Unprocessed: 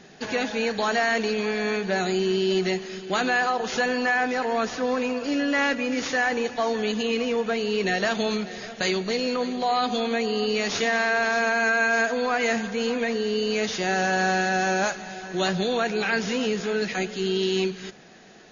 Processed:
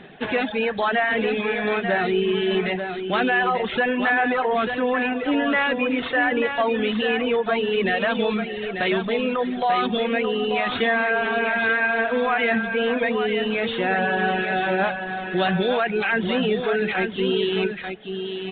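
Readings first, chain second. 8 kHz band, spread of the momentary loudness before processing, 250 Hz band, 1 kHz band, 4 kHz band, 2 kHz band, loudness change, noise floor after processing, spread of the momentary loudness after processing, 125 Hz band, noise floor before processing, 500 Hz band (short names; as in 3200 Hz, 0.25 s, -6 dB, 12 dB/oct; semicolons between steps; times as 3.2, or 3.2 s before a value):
n/a, 5 LU, +2.5 dB, +2.5 dB, +0.5 dB, +2.5 dB, +2.5 dB, -31 dBFS, 4 LU, +2.0 dB, -39 dBFS, +2.5 dB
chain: reverb removal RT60 1.3 s; in parallel at 0 dB: limiter -21.5 dBFS, peak gain reduction 10 dB; on the sum: echo 0.89 s -7 dB; downsampling 8000 Hz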